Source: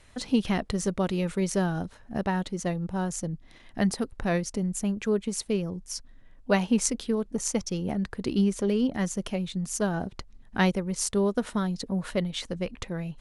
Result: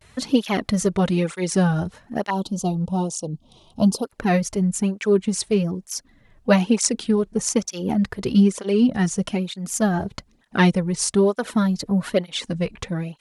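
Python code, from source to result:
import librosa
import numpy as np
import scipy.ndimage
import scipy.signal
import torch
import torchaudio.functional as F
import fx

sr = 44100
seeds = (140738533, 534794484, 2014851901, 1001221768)

y = fx.cheby1_bandstop(x, sr, low_hz=1000.0, high_hz=3300.0, order=2, at=(2.3, 4.04))
y = fx.vibrato(y, sr, rate_hz=0.53, depth_cents=63.0)
y = fx.flanger_cancel(y, sr, hz=1.1, depth_ms=4.2)
y = y * 10.0 ** (9.0 / 20.0)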